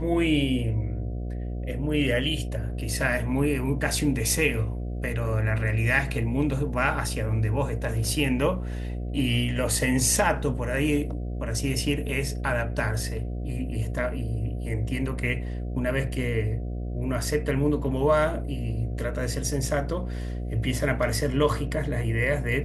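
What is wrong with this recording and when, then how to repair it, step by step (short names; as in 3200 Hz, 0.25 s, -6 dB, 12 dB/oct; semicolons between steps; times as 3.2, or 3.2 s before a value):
buzz 60 Hz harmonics 12 -31 dBFS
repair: de-hum 60 Hz, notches 12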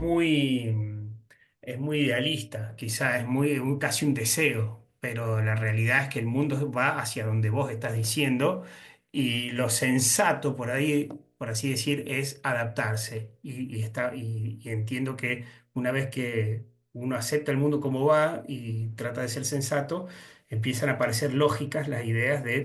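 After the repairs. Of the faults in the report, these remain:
none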